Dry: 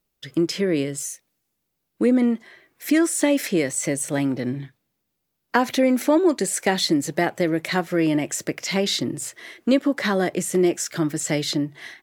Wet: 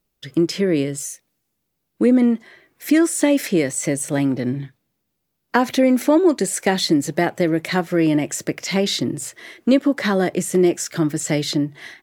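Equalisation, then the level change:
low-shelf EQ 440 Hz +3.5 dB
+1.0 dB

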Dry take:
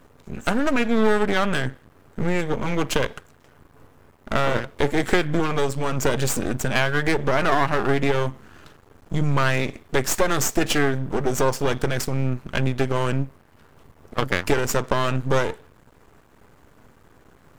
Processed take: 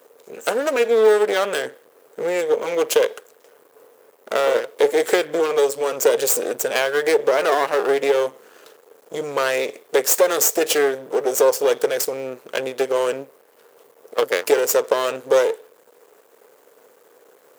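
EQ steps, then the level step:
high-pass with resonance 470 Hz, resonance Q 4.9
high-shelf EQ 3,700 Hz +9 dB
high-shelf EQ 12,000 Hz +9 dB
−3.0 dB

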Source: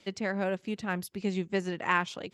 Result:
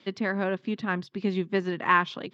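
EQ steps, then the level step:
loudspeaker in its box 110–5,100 Hz, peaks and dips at 140 Hz +9 dB, 250 Hz +9 dB, 370 Hz +4 dB, 1,100 Hz +8 dB, 1,700 Hz +5 dB, 3,500 Hz +5 dB
0.0 dB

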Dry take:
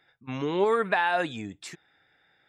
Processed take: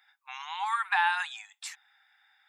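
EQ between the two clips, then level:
linear-phase brick-wall high-pass 740 Hz
high-shelf EQ 8,300 Hz +6.5 dB
0.0 dB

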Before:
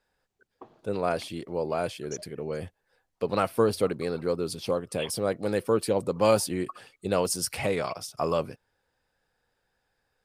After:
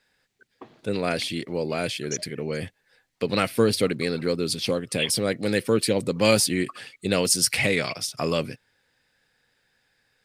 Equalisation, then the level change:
high-shelf EQ 2,200 Hz +8 dB
dynamic equaliser 1,000 Hz, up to −5 dB, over −37 dBFS, Q 1.1
octave-band graphic EQ 125/250/500/2,000/4,000/8,000 Hz +8/+8/+3/+11/+6/+3 dB
−3.0 dB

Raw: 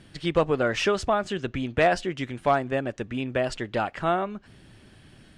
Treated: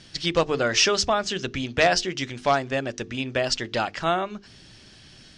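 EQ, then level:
low-pass with resonance 5,600 Hz, resonance Q 2.7
high-shelf EQ 3,500 Hz +11 dB
mains-hum notches 50/100/150/200/250/300/350/400/450 Hz
0.0 dB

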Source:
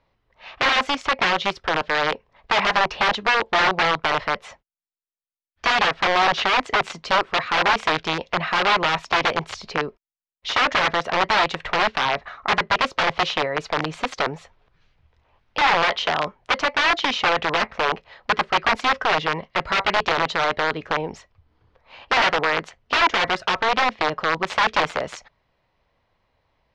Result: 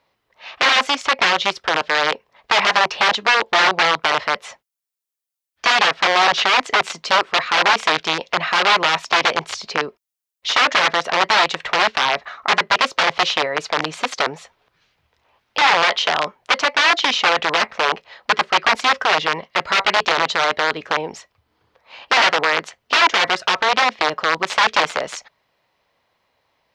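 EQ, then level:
high-pass filter 310 Hz 6 dB per octave
high-shelf EQ 4,900 Hz +9 dB
+3.0 dB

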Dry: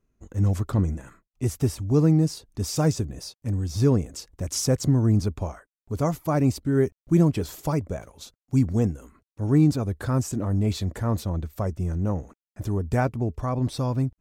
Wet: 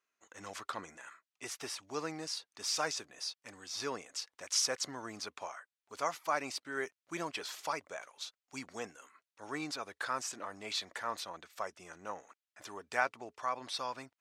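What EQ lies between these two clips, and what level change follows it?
high-pass filter 1,300 Hz 12 dB per octave
dynamic equaliser 7,400 Hz, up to −4 dB, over −53 dBFS, Q 2.9
high-frequency loss of the air 67 metres
+3.5 dB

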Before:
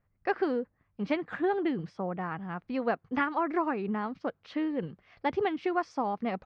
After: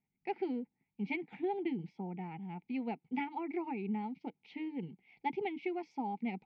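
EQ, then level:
formant filter u
parametric band 570 Hz −5.5 dB 2.3 octaves
phaser with its sweep stopped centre 300 Hz, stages 6
+14.5 dB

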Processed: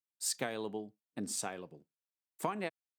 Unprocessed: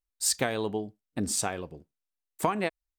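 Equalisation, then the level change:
high-pass filter 130 Hz 24 dB per octave
−8.5 dB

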